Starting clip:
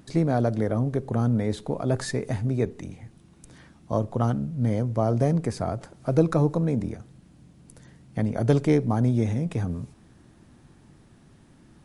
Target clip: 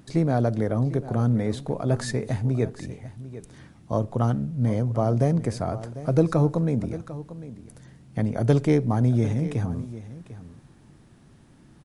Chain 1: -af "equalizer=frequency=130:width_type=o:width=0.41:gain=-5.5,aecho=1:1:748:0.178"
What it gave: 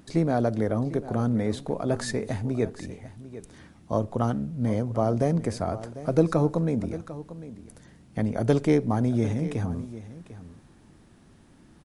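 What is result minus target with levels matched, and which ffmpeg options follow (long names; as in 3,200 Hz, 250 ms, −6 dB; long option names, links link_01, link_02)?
125 Hz band −3.0 dB
-af "equalizer=frequency=130:width_type=o:width=0.41:gain=2.5,aecho=1:1:748:0.178"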